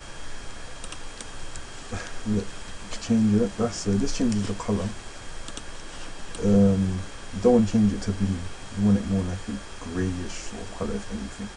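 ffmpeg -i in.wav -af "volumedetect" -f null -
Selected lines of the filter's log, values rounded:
mean_volume: -25.8 dB
max_volume: -7.5 dB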